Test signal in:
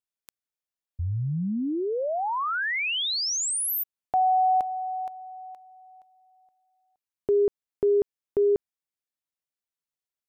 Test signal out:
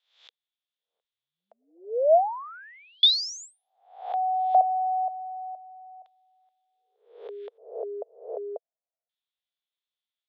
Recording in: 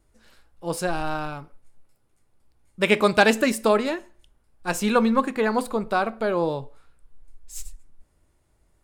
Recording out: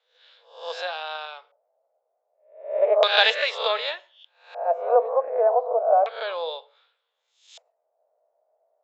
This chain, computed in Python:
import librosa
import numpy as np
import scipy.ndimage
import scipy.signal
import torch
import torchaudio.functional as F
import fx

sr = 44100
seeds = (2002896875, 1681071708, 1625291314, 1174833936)

y = fx.spec_swells(x, sr, rise_s=0.51)
y = fx.filter_lfo_lowpass(y, sr, shape='square', hz=0.33, low_hz=660.0, high_hz=3500.0, q=7.6)
y = scipy.signal.sosfilt(scipy.signal.cheby1(5, 1.0, [470.0, 7300.0], 'bandpass', fs=sr, output='sos'), y)
y = F.gain(torch.from_numpy(y), -5.0).numpy()